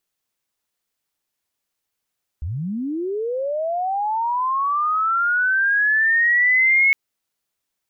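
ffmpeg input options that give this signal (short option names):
-f lavfi -i "aevalsrc='pow(10,(-23.5+11.5*t/4.51)/20)*sin(2*PI*(66*t+2134*t*t/(2*4.51)))':d=4.51:s=44100"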